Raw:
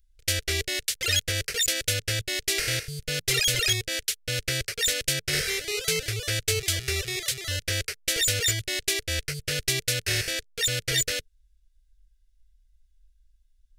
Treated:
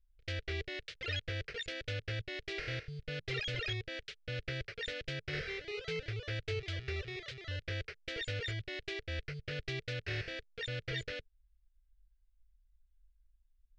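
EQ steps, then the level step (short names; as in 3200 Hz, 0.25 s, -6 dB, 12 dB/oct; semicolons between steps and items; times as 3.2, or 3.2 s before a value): LPF 7700 Hz 24 dB/oct; air absorption 330 m; -7.5 dB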